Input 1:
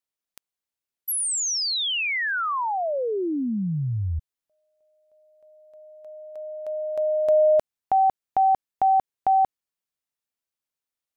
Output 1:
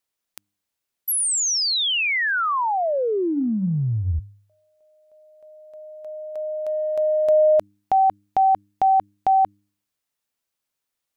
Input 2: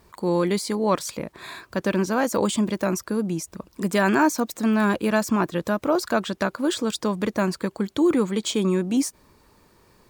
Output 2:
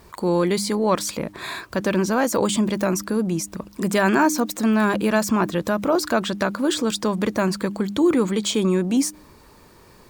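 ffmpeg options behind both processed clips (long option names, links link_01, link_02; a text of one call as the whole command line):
ffmpeg -i in.wav -filter_complex "[0:a]bandreject=frequency=101.2:width_type=h:width=4,bandreject=frequency=202.4:width_type=h:width=4,bandreject=frequency=303.6:width_type=h:width=4,asplit=2[link_01][link_02];[link_02]acompressor=threshold=-32dB:ratio=6:attack=0.64:release=32:knee=1:detection=peak,volume=2dB[link_03];[link_01][link_03]amix=inputs=2:normalize=0" out.wav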